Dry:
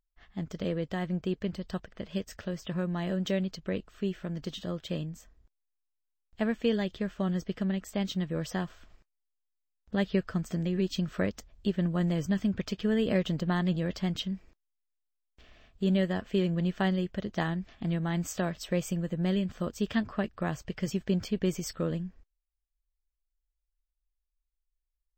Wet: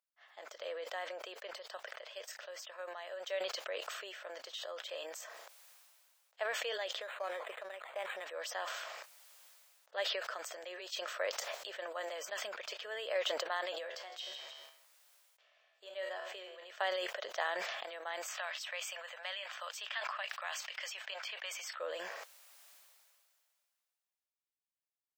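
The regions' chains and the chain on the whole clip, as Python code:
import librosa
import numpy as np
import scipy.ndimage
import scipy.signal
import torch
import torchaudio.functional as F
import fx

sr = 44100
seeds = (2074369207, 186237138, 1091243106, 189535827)

y = fx.chain(x, sr, fx.low_shelf(hz=210.0, db=-11.0),
    fx.upward_expand(threshold_db=-48.0, expansion=1.5), at=(1.75, 3.41))
y = fx.chain(y, sr, fx.lowpass(hz=5600.0, slope=24),
    fx.low_shelf(hz=220.0, db=-6.0),
    fx.resample_linear(factor=8), at=(7.01, 8.26))
y = fx.chain(y, sr, fx.comb_fb(f0_hz=73.0, decay_s=0.42, harmonics='all', damping=0.0, mix_pct=70),
    fx.echo_feedback(ms=158, feedback_pct=22, wet_db=-18.5), at=(13.78, 16.7))
y = fx.chain(y, sr, fx.ladder_highpass(hz=630.0, resonance_pct=25),
    fx.peak_eq(hz=2700.0, db=9.0, octaves=1.8),
    fx.band_squash(depth_pct=70), at=(18.28, 21.8))
y = scipy.signal.sosfilt(scipy.signal.ellip(4, 1.0, 70, 550.0, 'highpass', fs=sr, output='sos'), y)
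y = fx.sustainer(y, sr, db_per_s=25.0)
y = F.gain(torch.from_numpy(y), -3.0).numpy()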